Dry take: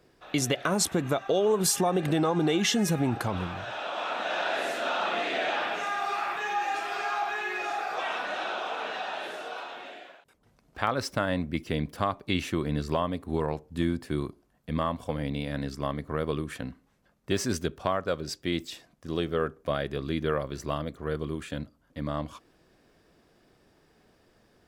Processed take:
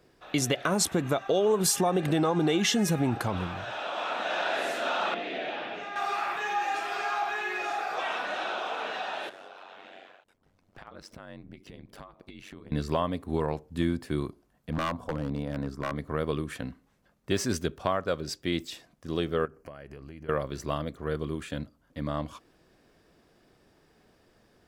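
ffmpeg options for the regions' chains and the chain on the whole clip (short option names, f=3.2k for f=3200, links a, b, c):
-filter_complex "[0:a]asettb=1/sr,asplit=3[a][b][c];[a]atrim=end=5.144[d];[b]atrim=start=5.14:end=5.96,asetpts=PTS-STARTPTS,afade=t=in:d=0.004:c=qsin,afade=t=out:st=0.816:d=0.004:c=qsin,lowpass=3.1k,equalizer=f=1.2k:w=0.82:g=-10[e];[c]atrim=start=5.956[f];[d][e]acrossfade=d=0.004:c1=hsin:c2=qsin[g];[g][f]acrossfade=d=0.004:c1=qsin:c2=hsin,asettb=1/sr,asplit=3[h][i][j];[h]atrim=end=9.294[k];[i]atrim=start=9.29:end=12.72,asetpts=PTS-STARTPTS,afade=t=in:d=0.004:c=qsin,afade=t=out:st=3.426:d=0.004:c=qsin,highshelf=f=6.7k:g=-6.5,acompressor=threshold=-41dB:ratio=5:attack=3.2:release=140:knee=1:detection=peak,aeval=exprs='val(0)*sin(2*PI*47*n/s)':c=same[l];[j]atrim=start=12.716[m];[k][l]acrossfade=d=0.004:c1=hsin:c2=qsin[n];[n][m]acrossfade=d=0.004:c1=qsin:c2=hsin,asettb=1/sr,asplit=3[o][p][q];[o]atrim=end=14.704[r];[p]atrim=start=14.7:end=15.96,asetpts=PTS-STARTPTS,afade=t=in:d=0.004:c=qsin,afade=t=out:st=1.256:d=0.004:c=qsin,highshelf=f=1.7k:t=q:w=1.5:g=-9,bandreject=f=60:t=h:w=6,bandreject=f=120:t=h:w=6,bandreject=f=180:t=h:w=6,bandreject=f=240:t=h:w=6,aeval=exprs='0.075*(abs(mod(val(0)/0.075+3,4)-2)-1)':c=same[s];[q]atrim=start=15.956[t];[r][s]acrossfade=d=0.004:c1=hsin:c2=qsin[u];[u][t]acrossfade=d=0.004:c1=qsin:c2=hsin,asettb=1/sr,asplit=3[v][w][x];[v]atrim=end=19.454[y];[w]atrim=start=19.45:end=20.29,asetpts=PTS-STARTPTS,afade=t=in:d=0.004:c=qsin,afade=t=out:st=0.836:d=0.004:c=qsin,asubboost=boost=5:cutoff=140,acompressor=threshold=-39dB:ratio=12:attack=3.2:release=140:knee=1:detection=peak,asuperstop=centerf=3600:order=4:qfactor=3.3[z];[x]atrim=start=20.286[aa];[y][z]acrossfade=d=0.004:c1=hsin:c2=qsin[ab];[ab][aa]acrossfade=d=0.004:c1=qsin:c2=hsin"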